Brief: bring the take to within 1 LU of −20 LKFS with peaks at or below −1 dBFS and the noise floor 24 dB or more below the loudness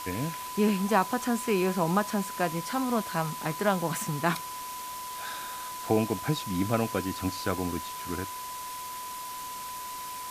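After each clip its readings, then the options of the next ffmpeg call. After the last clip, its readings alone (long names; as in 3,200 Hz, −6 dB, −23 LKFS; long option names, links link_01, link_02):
interfering tone 1,000 Hz; level of the tone −37 dBFS; background noise floor −38 dBFS; target noise floor −55 dBFS; integrated loudness −30.5 LKFS; sample peak −9.5 dBFS; target loudness −20.0 LKFS
→ -af "bandreject=frequency=1000:width=30"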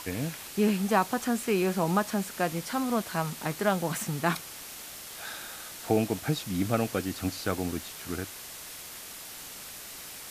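interfering tone none found; background noise floor −43 dBFS; target noise floor −55 dBFS
→ -af "afftdn=noise_reduction=12:noise_floor=-43"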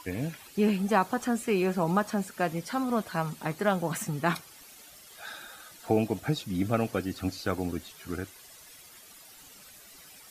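background noise floor −52 dBFS; target noise floor −54 dBFS
→ -af "afftdn=noise_reduction=6:noise_floor=-52"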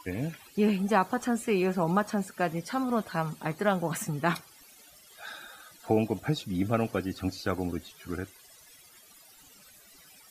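background noise floor −56 dBFS; integrated loudness −30.0 LKFS; sample peak −10.0 dBFS; target loudness −20.0 LKFS
→ -af "volume=10dB,alimiter=limit=-1dB:level=0:latency=1"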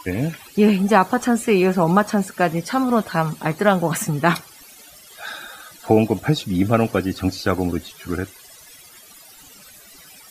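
integrated loudness −20.0 LKFS; sample peak −1.0 dBFS; background noise floor −46 dBFS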